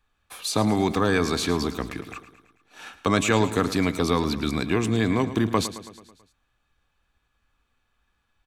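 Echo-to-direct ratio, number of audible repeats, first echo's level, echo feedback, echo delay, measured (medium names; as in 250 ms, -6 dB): -12.0 dB, 5, -14.0 dB, 58%, 109 ms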